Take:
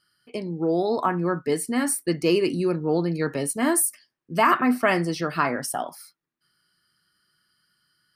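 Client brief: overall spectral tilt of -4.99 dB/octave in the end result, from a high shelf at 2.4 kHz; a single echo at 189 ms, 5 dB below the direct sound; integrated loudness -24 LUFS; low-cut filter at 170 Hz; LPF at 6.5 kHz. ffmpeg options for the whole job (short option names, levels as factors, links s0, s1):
-af "highpass=170,lowpass=6500,highshelf=f=2400:g=-6,aecho=1:1:189:0.562"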